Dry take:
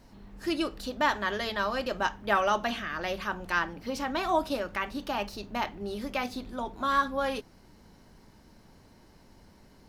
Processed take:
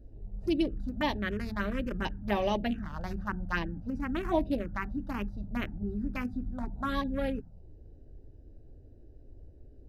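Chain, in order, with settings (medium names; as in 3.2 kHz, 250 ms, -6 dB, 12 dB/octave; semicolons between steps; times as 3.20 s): local Wiener filter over 41 samples; bass shelf 260 Hz +11 dB; touch-sensitive phaser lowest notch 160 Hz, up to 1.4 kHz, full sweep at -22.5 dBFS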